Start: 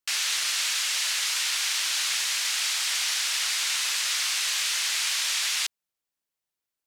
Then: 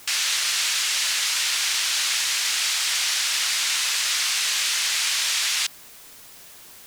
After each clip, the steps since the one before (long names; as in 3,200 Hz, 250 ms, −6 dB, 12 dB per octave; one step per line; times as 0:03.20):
background noise white −49 dBFS
level +3.5 dB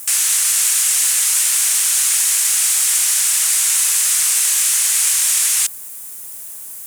high shelf with overshoot 6,300 Hz +13.5 dB, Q 1.5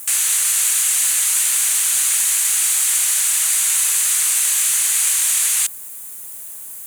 parametric band 5,300 Hz −8 dB 0.26 octaves
level −1 dB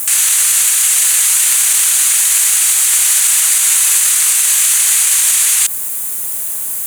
boost into a limiter +14.5 dB
level −1 dB